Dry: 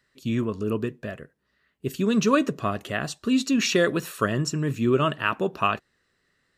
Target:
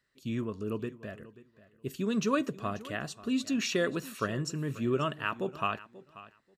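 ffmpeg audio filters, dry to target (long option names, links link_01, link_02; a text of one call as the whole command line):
ffmpeg -i in.wav -af "aecho=1:1:536|1072:0.126|0.0214,volume=-8dB" out.wav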